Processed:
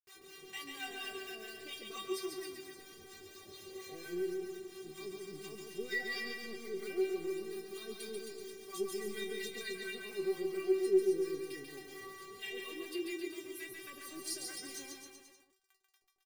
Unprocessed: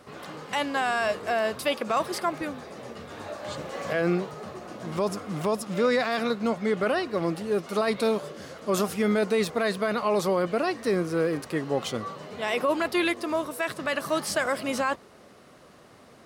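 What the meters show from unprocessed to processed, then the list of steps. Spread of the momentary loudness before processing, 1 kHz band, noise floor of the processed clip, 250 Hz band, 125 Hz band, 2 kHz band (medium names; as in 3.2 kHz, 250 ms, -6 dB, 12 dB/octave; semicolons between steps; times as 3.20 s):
12 LU, -23.0 dB, -73 dBFS, -13.0 dB, -23.5 dB, -13.0 dB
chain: high-order bell 960 Hz -13.5 dB; in parallel at -7 dB: saturation -29 dBFS, distortion -9 dB; on the sum: bit crusher 7-bit; harmonic tremolo 4.3 Hz, depth 100%, crossover 820 Hz; inharmonic resonator 380 Hz, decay 0.26 s, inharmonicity 0.002; on a send: bouncing-ball echo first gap 140 ms, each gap 0.9×, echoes 5; on the sum: trim +5 dB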